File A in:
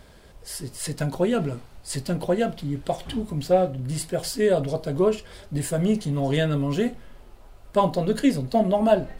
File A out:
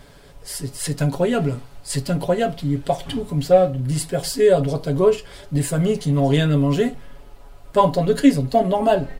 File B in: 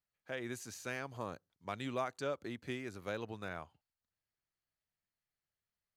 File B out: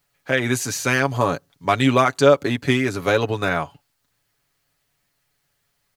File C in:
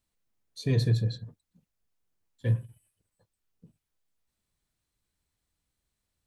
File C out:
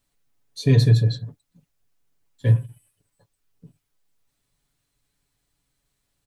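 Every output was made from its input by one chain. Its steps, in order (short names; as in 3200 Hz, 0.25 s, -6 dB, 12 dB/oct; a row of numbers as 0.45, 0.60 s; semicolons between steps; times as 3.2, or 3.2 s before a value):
comb 7.1 ms, depth 59%; match loudness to -20 LUFS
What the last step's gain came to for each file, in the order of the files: +3.0, +21.0, +6.5 dB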